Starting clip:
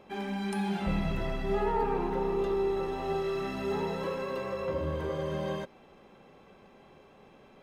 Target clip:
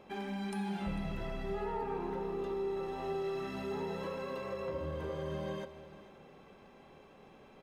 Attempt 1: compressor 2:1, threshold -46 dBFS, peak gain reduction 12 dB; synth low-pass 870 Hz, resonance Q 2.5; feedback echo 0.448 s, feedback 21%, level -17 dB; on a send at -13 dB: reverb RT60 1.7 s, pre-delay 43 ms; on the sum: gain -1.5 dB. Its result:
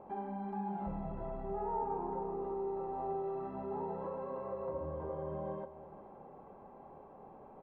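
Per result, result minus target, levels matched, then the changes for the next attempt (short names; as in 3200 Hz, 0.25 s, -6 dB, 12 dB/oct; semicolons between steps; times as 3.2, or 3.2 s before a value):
1000 Hz band +4.5 dB; compressor: peak gain reduction +4 dB
remove: synth low-pass 870 Hz, resonance Q 2.5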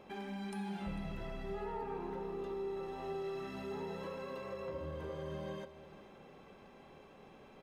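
compressor: peak gain reduction +4 dB
change: compressor 2:1, threshold -38 dBFS, peak gain reduction 8 dB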